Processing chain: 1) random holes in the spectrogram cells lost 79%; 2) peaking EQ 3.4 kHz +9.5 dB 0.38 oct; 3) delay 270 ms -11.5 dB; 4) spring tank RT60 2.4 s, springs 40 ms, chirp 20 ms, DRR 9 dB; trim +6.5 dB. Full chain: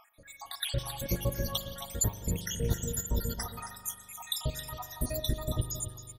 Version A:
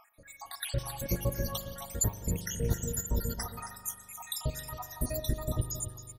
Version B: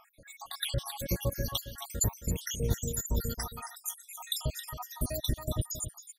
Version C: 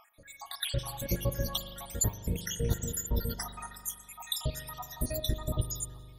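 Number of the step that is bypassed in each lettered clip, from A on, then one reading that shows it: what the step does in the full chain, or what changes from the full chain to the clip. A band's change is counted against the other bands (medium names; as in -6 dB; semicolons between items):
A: 2, 4 kHz band -5.5 dB; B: 4, echo-to-direct -7.0 dB to -11.5 dB; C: 3, echo-to-direct -7.0 dB to -9.0 dB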